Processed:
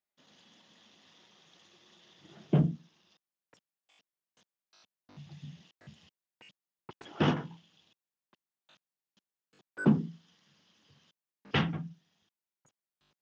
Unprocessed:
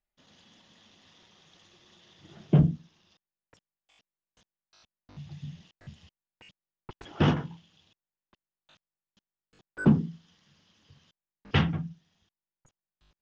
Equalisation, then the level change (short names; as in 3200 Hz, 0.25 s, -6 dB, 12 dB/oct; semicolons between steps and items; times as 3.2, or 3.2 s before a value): HPF 160 Hz 12 dB/oct; -2.0 dB